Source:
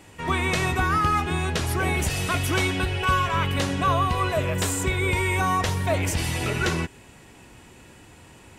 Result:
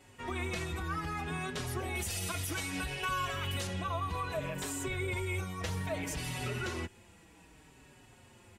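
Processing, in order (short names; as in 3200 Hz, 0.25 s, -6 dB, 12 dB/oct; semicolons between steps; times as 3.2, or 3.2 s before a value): 1.95–3.67 high shelf 4200 Hz +11 dB; limiter -17.5 dBFS, peak gain reduction 9 dB; endless flanger 5 ms -0.62 Hz; gain -6.5 dB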